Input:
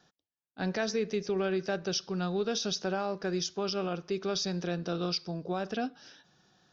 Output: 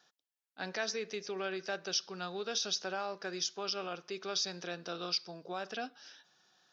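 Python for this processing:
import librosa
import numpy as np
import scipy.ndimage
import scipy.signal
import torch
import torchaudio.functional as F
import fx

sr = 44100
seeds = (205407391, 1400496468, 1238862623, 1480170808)

y = fx.highpass(x, sr, hz=1000.0, slope=6)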